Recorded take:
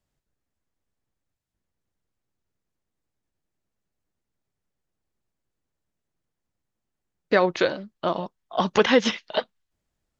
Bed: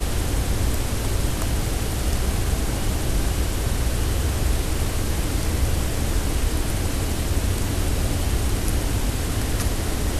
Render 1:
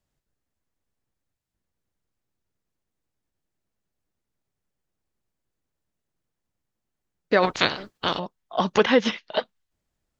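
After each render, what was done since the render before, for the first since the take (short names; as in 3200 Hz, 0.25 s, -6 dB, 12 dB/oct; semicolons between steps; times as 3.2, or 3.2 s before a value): 7.42–8.18 spectral limiter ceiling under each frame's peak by 23 dB; 8.83–9.36 air absorption 84 m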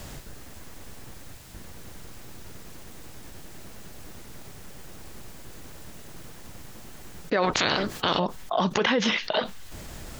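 limiter -15.5 dBFS, peak gain reduction 11 dB; fast leveller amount 70%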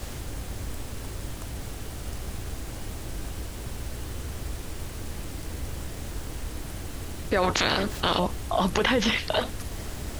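add bed -13 dB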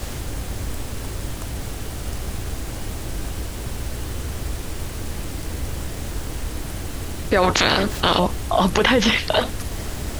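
gain +6.5 dB; limiter -1 dBFS, peak gain reduction 1 dB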